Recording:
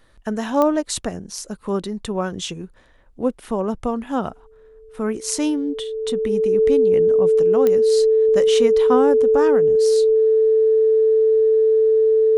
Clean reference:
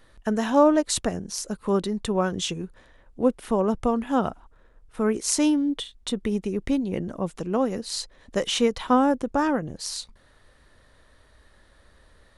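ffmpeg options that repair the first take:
-af "adeclick=t=4,bandreject=f=440:w=30"

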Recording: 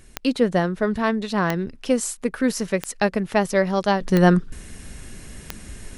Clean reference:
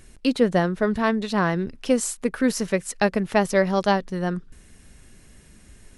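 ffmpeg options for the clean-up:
-af "adeclick=t=4,asetnsamples=n=441:p=0,asendcmd='4.01 volume volume -11dB',volume=0dB"

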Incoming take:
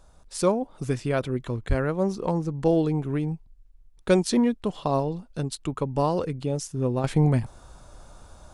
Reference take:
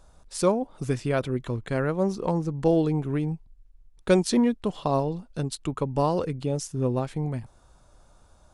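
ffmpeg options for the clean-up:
-filter_complex "[0:a]asplit=3[a][b][c];[a]afade=t=out:st=1.68:d=0.02[d];[b]highpass=f=140:w=0.5412,highpass=f=140:w=1.3066,afade=t=in:st=1.68:d=0.02,afade=t=out:st=1.8:d=0.02[e];[c]afade=t=in:st=1.8:d=0.02[f];[d][e][f]amix=inputs=3:normalize=0,asetnsamples=n=441:p=0,asendcmd='7.04 volume volume -9dB',volume=0dB"

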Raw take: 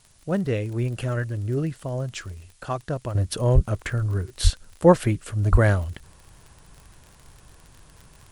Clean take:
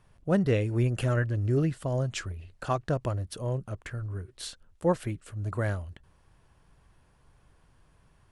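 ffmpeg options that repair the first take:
-filter_complex "[0:a]adeclick=t=4,asplit=3[a][b][c];[a]afade=t=out:st=3.54:d=0.02[d];[b]highpass=f=140:w=0.5412,highpass=f=140:w=1.3066,afade=t=in:st=3.54:d=0.02,afade=t=out:st=3.66:d=0.02[e];[c]afade=t=in:st=3.66:d=0.02[f];[d][e][f]amix=inputs=3:normalize=0,asplit=3[g][h][i];[g]afade=t=out:st=4.43:d=0.02[j];[h]highpass=f=140:w=0.5412,highpass=f=140:w=1.3066,afade=t=in:st=4.43:d=0.02,afade=t=out:st=4.55:d=0.02[k];[i]afade=t=in:st=4.55:d=0.02[l];[j][k][l]amix=inputs=3:normalize=0,asplit=3[m][n][o];[m]afade=t=out:st=5.51:d=0.02[p];[n]highpass=f=140:w=0.5412,highpass=f=140:w=1.3066,afade=t=in:st=5.51:d=0.02,afade=t=out:st=5.63:d=0.02[q];[o]afade=t=in:st=5.63:d=0.02[r];[p][q][r]amix=inputs=3:normalize=0,agate=range=-21dB:threshold=-44dB,asetnsamples=n=441:p=0,asendcmd='3.15 volume volume -10.5dB',volume=0dB"

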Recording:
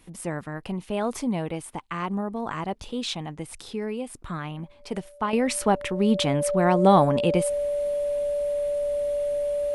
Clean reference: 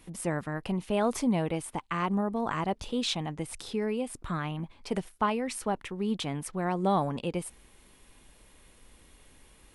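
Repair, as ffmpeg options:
-af "bandreject=f=580:w=30,asetnsamples=n=441:p=0,asendcmd='5.33 volume volume -9dB',volume=0dB"

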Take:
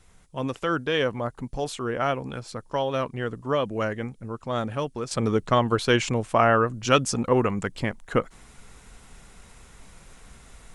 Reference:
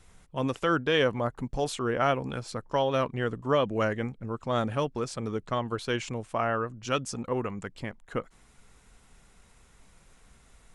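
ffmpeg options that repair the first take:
-af "agate=range=-21dB:threshold=-42dB,asetnsamples=n=441:p=0,asendcmd='5.11 volume volume -9dB',volume=0dB"

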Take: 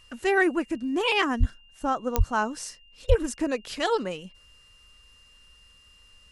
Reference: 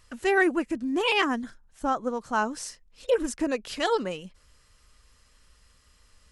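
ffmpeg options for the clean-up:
-filter_complex "[0:a]adeclick=t=4,bandreject=f=2.8k:w=30,asplit=3[a][b][c];[a]afade=t=out:st=1.39:d=0.02[d];[b]highpass=f=140:w=0.5412,highpass=f=140:w=1.3066,afade=t=in:st=1.39:d=0.02,afade=t=out:st=1.51:d=0.02[e];[c]afade=t=in:st=1.51:d=0.02[f];[d][e][f]amix=inputs=3:normalize=0,asplit=3[g][h][i];[g]afade=t=out:st=2.17:d=0.02[j];[h]highpass=f=140:w=0.5412,highpass=f=140:w=1.3066,afade=t=in:st=2.17:d=0.02,afade=t=out:st=2.29:d=0.02[k];[i]afade=t=in:st=2.29:d=0.02[l];[j][k][l]amix=inputs=3:normalize=0,asplit=3[m][n][o];[m]afade=t=out:st=3.08:d=0.02[p];[n]highpass=f=140:w=0.5412,highpass=f=140:w=1.3066,afade=t=in:st=3.08:d=0.02,afade=t=out:st=3.2:d=0.02[q];[o]afade=t=in:st=3.2:d=0.02[r];[p][q][r]amix=inputs=3:normalize=0"

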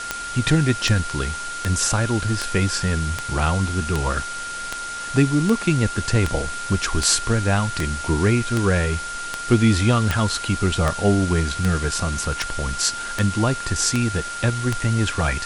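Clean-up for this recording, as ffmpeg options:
-af "adeclick=t=4,bandreject=f=1.4k:w=30,afftdn=nr=30:nf=-30"

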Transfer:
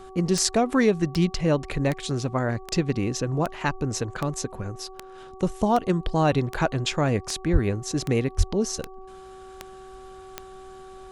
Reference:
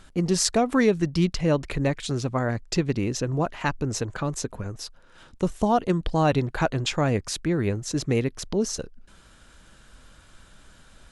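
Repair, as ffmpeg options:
-filter_complex "[0:a]adeclick=t=4,bandreject=f=378.7:t=h:w=4,bandreject=f=757.4:t=h:w=4,bandreject=f=1.1361k:t=h:w=4,asplit=3[a][b][c];[a]afade=t=out:st=7.52:d=0.02[d];[b]highpass=f=140:w=0.5412,highpass=f=140:w=1.3066,afade=t=in:st=7.52:d=0.02,afade=t=out:st=7.64:d=0.02[e];[c]afade=t=in:st=7.64:d=0.02[f];[d][e][f]amix=inputs=3:normalize=0,asplit=3[g][h][i];[g]afade=t=out:st=8.37:d=0.02[j];[h]highpass=f=140:w=0.5412,highpass=f=140:w=1.3066,afade=t=in:st=8.37:d=0.02,afade=t=out:st=8.49:d=0.02[k];[i]afade=t=in:st=8.49:d=0.02[l];[j][k][l]amix=inputs=3:normalize=0"

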